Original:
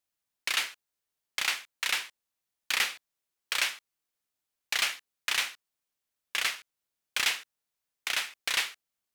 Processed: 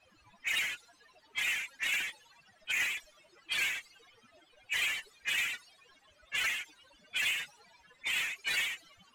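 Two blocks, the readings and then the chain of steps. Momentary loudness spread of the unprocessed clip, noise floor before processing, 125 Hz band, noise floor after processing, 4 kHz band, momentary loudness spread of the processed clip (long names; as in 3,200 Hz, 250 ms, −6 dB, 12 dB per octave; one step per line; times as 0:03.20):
10 LU, below −85 dBFS, can't be measured, −66 dBFS, −4.5 dB, 9 LU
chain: spectral peaks only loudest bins 16
power curve on the samples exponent 0.35
low-pass that shuts in the quiet parts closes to 2,300 Hz, open at −25.5 dBFS
level −4.5 dB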